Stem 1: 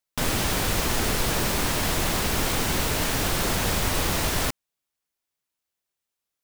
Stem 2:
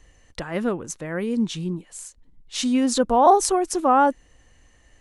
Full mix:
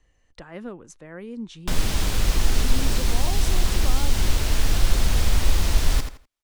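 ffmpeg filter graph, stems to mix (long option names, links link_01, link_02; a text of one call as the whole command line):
ffmpeg -i stem1.wav -i stem2.wav -filter_complex "[0:a]adelay=1500,volume=0.5dB,asplit=2[link_01][link_02];[link_02]volume=-9.5dB[link_03];[1:a]volume=-10dB[link_04];[link_03]aecho=0:1:83|166|249:1|0.21|0.0441[link_05];[link_01][link_04][link_05]amix=inputs=3:normalize=0,highshelf=frequency=8900:gain=-10.5,acrossover=split=270|3000[link_06][link_07][link_08];[link_07]acompressor=threshold=-33dB:ratio=6[link_09];[link_06][link_09][link_08]amix=inputs=3:normalize=0,asubboost=boost=6:cutoff=57" out.wav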